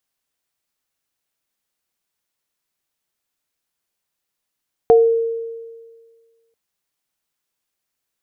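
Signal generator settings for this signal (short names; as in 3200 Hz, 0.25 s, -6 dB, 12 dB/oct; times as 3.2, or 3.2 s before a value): sine partials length 1.64 s, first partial 458 Hz, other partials 720 Hz, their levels -6 dB, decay 1.68 s, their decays 0.28 s, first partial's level -6 dB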